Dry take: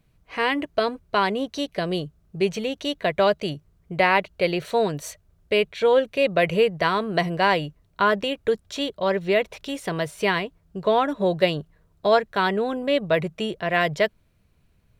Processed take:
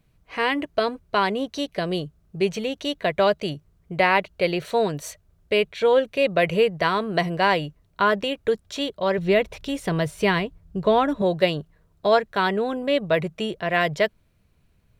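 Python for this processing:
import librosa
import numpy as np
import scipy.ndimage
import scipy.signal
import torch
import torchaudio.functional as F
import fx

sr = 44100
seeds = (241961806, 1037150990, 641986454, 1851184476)

y = fx.low_shelf(x, sr, hz=180.0, db=11.5, at=(9.18, 11.22))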